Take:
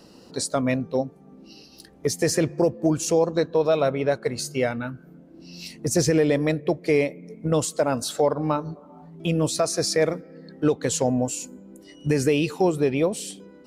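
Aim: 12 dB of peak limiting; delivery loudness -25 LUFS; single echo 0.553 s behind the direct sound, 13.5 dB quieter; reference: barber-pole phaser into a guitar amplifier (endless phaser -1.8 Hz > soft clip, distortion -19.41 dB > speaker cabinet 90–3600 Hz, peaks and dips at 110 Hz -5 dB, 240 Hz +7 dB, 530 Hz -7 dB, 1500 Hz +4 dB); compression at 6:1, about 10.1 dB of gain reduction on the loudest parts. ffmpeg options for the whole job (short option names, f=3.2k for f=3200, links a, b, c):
-filter_complex "[0:a]acompressor=threshold=-27dB:ratio=6,alimiter=level_in=3dB:limit=-24dB:level=0:latency=1,volume=-3dB,aecho=1:1:553:0.211,asplit=2[a][b];[b]afreqshift=-1.8[c];[a][c]amix=inputs=2:normalize=1,asoftclip=threshold=-31dB,highpass=90,equalizer=f=110:t=q:w=4:g=-5,equalizer=f=240:t=q:w=4:g=7,equalizer=f=530:t=q:w=4:g=-7,equalizer=f=1.5k:t=q:w=4:g=4,lowpass=f=3.6k:w=0.5412,lowpass=f=3.6k:w=1.3066,volume=16.5dB"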